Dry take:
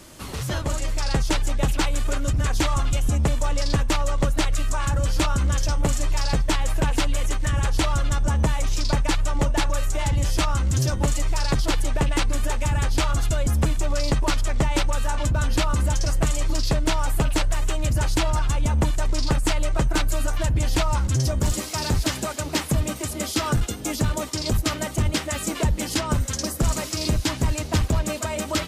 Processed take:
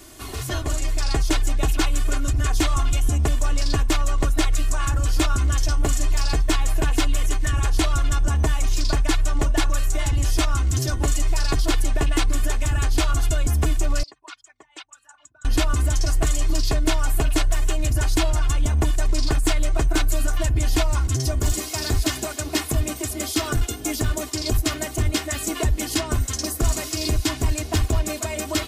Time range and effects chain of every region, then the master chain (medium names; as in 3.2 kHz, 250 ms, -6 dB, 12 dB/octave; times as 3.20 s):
14.03–15.45 s: resonances exaggerated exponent 2 + high-pass 1.4 kHz
whole clip: treble shelf 12 kHz +7.5 dB; comb 2.8 ms, depth 68%; trim -1.5 dB